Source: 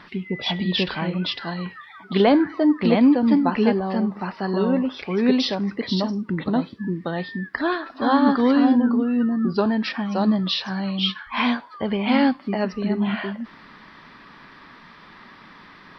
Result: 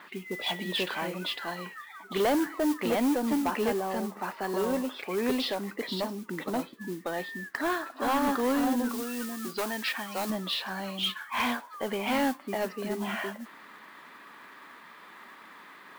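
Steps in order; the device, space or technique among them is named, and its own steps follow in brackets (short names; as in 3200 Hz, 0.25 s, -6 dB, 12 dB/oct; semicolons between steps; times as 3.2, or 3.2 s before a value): carbon microphone (BPF 350–3600 Hz; soft clip -18.5 dBFS, distortion -13 dB; modulation noise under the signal 17 dB); 8.89–10.3 tilt shelf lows -5.5 dB, about 1300 Hz; gain -2.5 dB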